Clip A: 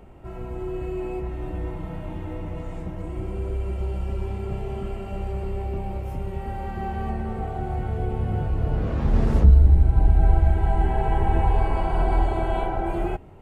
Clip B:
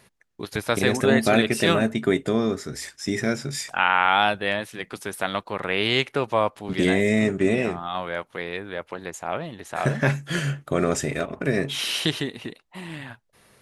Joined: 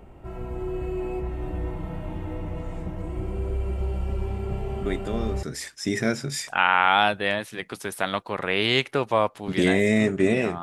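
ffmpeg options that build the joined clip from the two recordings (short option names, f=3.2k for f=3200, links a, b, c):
-filter_complex "[1:a]asplit=2[a][b];[0:a]apad=whole_dur=10.62,atrim=end=10.62,atrim=end=5.432[c];[b]atrim=start=2.638:end=7.83[d];[a]atrim=start=2.06:end=2.64,asetpts=PTS-STARTPTS,volume=-7.5dB,afade=t=in:d=0.004:c=hsin,afade=t=out:st=0.576:d=0.004:c=hsin,adelay=213885S[e];[c][d]acrossfade=d=0.004:c1=hsin:c2=hsin[f];[f][e]amix=inputs=2:normalize=0"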